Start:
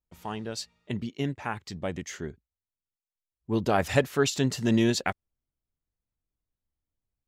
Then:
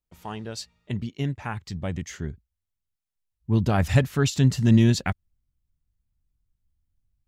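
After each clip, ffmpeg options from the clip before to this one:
-af "asubboost=boost=6:cutoff=180"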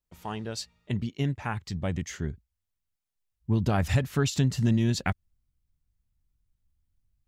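-af "acompressor=threshold=-20dB:ratio=6"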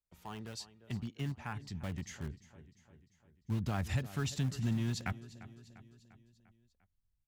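-filter_complex "[0:a]aecho=1:1:348|696|1044|1392|1740:0.133|0.0747|0.0418|0.0234|0.0131,acrossover=split=360|560|2000[a][b][c][d];[b]aeval=exprs='(mod(126*val(0)+1,2)-1)/126':c=same[e];[a][e][c][d]amix=inputs=4:normalize=0,volume=-9dB"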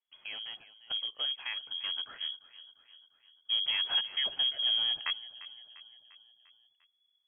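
-af "lowpass=f=2.9k:t=q:w=0.5098,lowpass=f=2.9k:t=q:w=0.6013,lowpass=f=2.9k:t=q:w=0.9,lowpass=f=2.9k:t=q:w=2.563,afreqshift=-3400,volume=3.5dB"

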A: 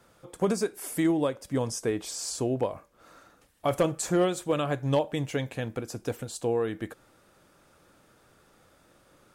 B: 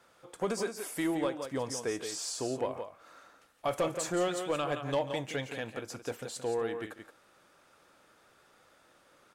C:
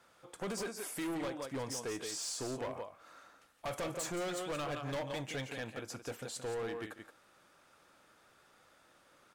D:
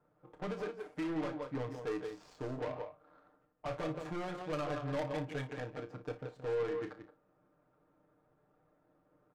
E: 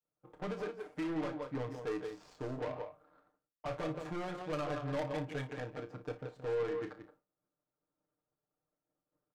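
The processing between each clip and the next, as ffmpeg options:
-filter_complex "[0:a]asplit=2[a][b];[b]aecho=0:1:142|172:0.119|0.355[c];[a][c]amix=inputs=2:normalize=0,asplit=2[d][e];[e]highpass=f=720:p=1,volume=13dB,asoftclip=type=tanh:threshold=-11dB[f];[d][f]amix=inputs=2:normalize=0,lowpass=f=5.6k:p=1,volume=-6dB,volume=-8dB"
-af "equalizer=f=450:w=1.5:g=-2.5,asoftclip=type=hard:threshold=-33.5dB,volume=-1.5dB"
-af "aecho=1:1:6.6:0.7,adynamicsmooth=sensitivity=7:basefreq=590,aecho=1:1:32|58:0.316|0.15,volume=-1dB"
-af "agate=range=-33dB:threshold=-59dB:ratio=3:detection=peak"

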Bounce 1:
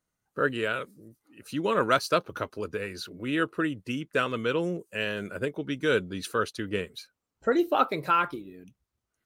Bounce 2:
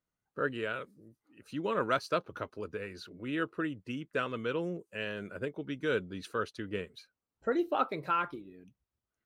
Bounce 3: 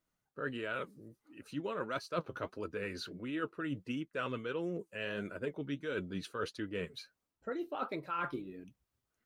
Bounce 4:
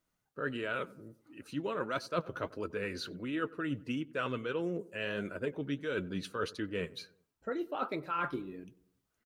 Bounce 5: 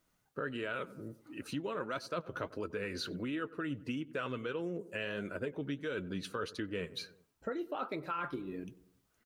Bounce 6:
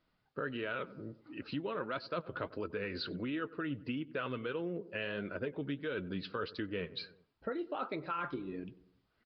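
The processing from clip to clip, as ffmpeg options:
-af "lowpass=f=3.6k:p=1,volume=-6dB"
-af "areverse,acompressor=threshold=-39dB:ratio=6,areverse,flanger=delay=3:depth=4.7:regen=60:speed=1.5:shape=sinusoidal,volume=8.5dB"
-filter_complex "[0:a]asplit=2[a][b];[b]adelay=94,lowpass=f=1.2k:p=1,volume=-19.5dB,asplit=2[c][d];[d]adelay=94,lowpass=f=1.2k:p=1,volume=0.54,asplit=2[e][f];[f]adelay=94,lowpass=f=1.2k:p=1,volume=0.54,asplit=2[g][h];[h]adelay=94,lowpass=f=1.2k:p=1,volume=0.54[i];[a][c][e][g][i]amix=inputs=5:normalize=0,volume=2.5dB"
-af "acompressor=threshold=-42dB:ratio=4,volume=6dB"
-af "aresample=11025,aresample=44100"

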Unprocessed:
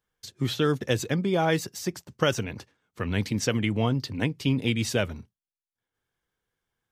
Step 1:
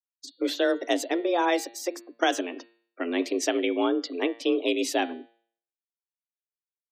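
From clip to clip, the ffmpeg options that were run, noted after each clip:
-af "afftfilt=real='re*gte(hypot(re,im),0.00631)':imag='im*gte(hypot(re,im),0.00631)':win_size=1024:overlap=0.75,afreqshift=170,bandreject=f=115.5:t=h:w=4,bandreject=f=231:t=h:w=4,bandreject=f=346.5:t=h:w=4,bandreject=f=462:t=h:w=4,bandreject=f=577.5:t=h:w=4,bandreject=f=693:t=h:w=4,bandreject=f=808.5:t=h:w=4,bandreject=f=924:t=h:w=4,bandreject=f=1.0395k:t=h:w=4,bandreject=f=1.155k:t=h:w=4,bandreject=f=1.2705k:t=h:w=4,bandreject=f=1.386k:t=h:w=4,bandreject=f=1.5015k:t=h:w=4,bandreject=f=1.617k:t=h:w=4,bandreject=f=1.7325k:t=h:w=4,bandreject=f=1.848k:t=h:w=4,bandreject=f=1.9635k:t=h:w=4,bandreject=f=2.079k:t=h:w=4,bandreject=f=2.1945k:t=h:w=4,bandreject=f=2.31k:t=h:w=4,bandreject=f=2.4255k:t=h:w=4,bandreject=f=2.541k:t=h:w=4,bandreject=f=2.6565k:t=h:w=4,bandreject=f=2.772k:t=h:w=4,bandreject=f=2.8875k:t=h:w=4,bandreject=f=3.003k:t=h:w=4,bandreject=f=3.1185k:t=h:w=4,bandreject=f=3.234k:t=h:w=4,bandreject=f=3.3495k:t=h:w=4,bandreject=f=3.465k:t=h:w=4,bandreject=f=3.5805k:t=h:w=4,bandreject=f=3.696k:t=h:w=4,bandreject=f=3.8115k:t=h:w=4,bandreject=f=3.927k:t=h:w=4,bandreject=f=4.0425k:t=h:w=4,bandreject=f=4.158k:t=h:w=4,bandreject=f=4.2735k:t=h:w=4,bandreject=f=4.389k:t=h:w=4,bandreject=f=4.5045k:t=h:w=4"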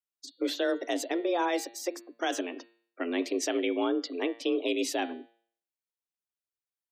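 -af "alimiter=limit=-17dB:level=0:latency=1:release=25,volume=-2.5dB"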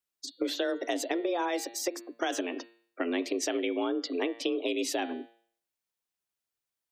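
-af "acompressor=threshold=-32dB:ratio=6,volume=5dB"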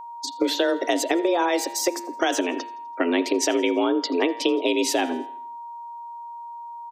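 -af "aeval=exprs='val(0)+0.00631*sin(2*PI*940*n/s)':c=same,aecho=1:1:83|166|249|332:0.0708|0.0375|0.0199|0.0105,volume=8.5dB"

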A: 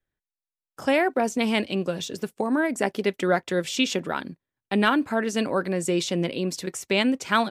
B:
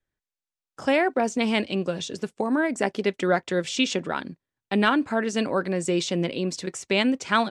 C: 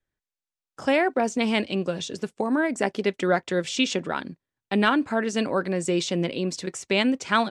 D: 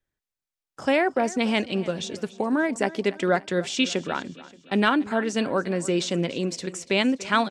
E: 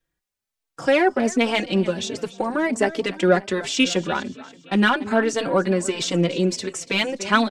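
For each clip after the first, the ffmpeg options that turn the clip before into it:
-af "lowpass=f=8.7k:w=0.5412,lowpass=f=8.7k:w=1.3066"
-af anull
-af "aecho=1:1:288|576|864|1152:0.119|0.0547|0.0251|0.0116"
-filter_complex "[0:a]asplit=2[a][b];[b]asoftclip=type=tanh:threshold=-21dB,volume=-5dB[c];[a][c]amix=inputs=2:normalize=0,asplit=2[d][e];[e]adelay=3.9,afreqshift=1.3[f];[d][f]amix=inputs=2:normalize=1,volume=4dB"

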